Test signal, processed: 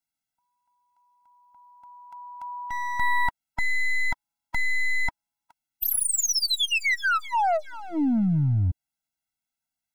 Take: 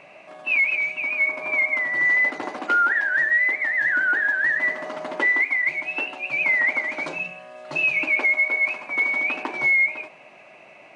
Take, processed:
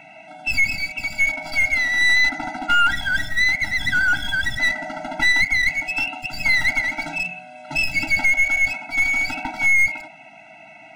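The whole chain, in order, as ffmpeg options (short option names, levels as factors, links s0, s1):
-af "aeval=exprs='clip(val(0),-1,0.0398)':c=same,afftfilt=real='re*eq(mod(floor(b*sr/1024/320),2),0)':imag='im*eq(mod(floor(b*sr/1024/320),2),0)':win_size=1024:overlap=0.75,volume=2"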